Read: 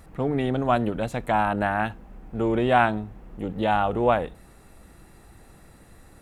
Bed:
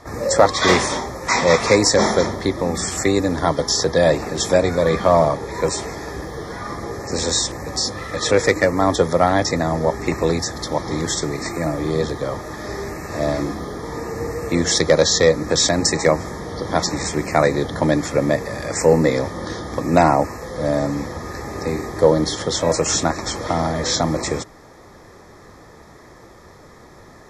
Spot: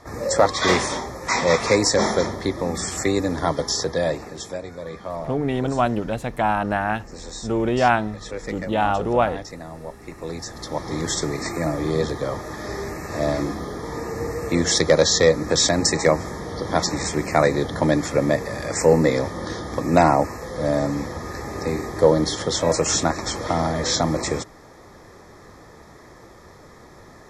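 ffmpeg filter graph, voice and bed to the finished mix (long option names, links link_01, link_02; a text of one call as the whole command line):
ffmpeg -i stem1.wav -i stem2.wav -filter_complex "[0:a]adelay=5100,volume=1.5dB[link_01];[1:a]volume=11.5dB,afade=type=out:start_time=3.59:duration=1:silence=0.223872,afade=type=in:start_time=10.15:duration=1.08:silence=0.177828[link_02];[link_01][link_02]amix=inputs=2:normalize=0" out.wav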